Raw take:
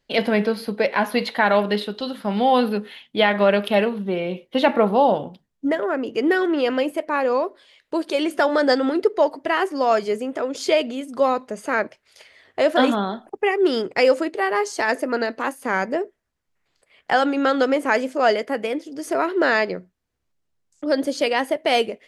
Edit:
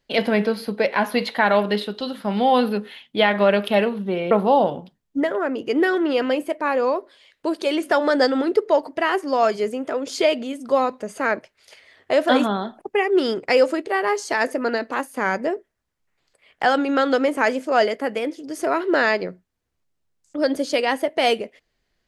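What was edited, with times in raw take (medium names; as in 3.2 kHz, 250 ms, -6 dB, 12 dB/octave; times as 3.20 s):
4.31–4.79 s: delete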